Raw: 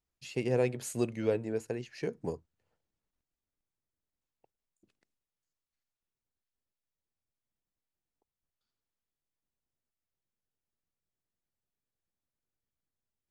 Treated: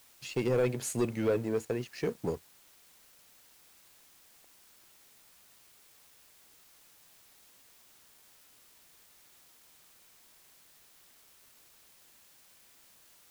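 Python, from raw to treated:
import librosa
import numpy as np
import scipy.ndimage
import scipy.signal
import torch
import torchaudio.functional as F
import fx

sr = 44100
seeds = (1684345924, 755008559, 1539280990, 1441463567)

p1 = fx.leveller(x, sr, passes=2)
p2 = fx.quant_dither(p1, sr, seeds[0], bits=8, dither='triangular')
p3 = p1 + F.gain(torch.from_numpy(p2), -5.0).numpy()
y = F.gain(torch.from_numpy(p3), -7.5).numpy()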